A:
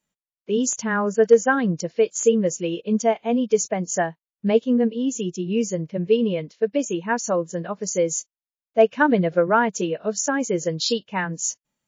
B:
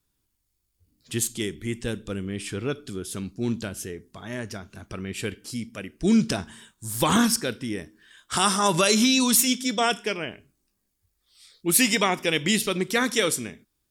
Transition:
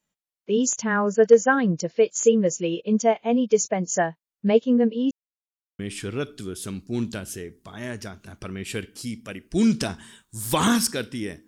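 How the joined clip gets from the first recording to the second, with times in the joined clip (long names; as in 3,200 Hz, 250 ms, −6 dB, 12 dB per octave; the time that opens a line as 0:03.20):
A
0:05.11–0:05.79: silence
0:05.79: continue with B from 0:02.28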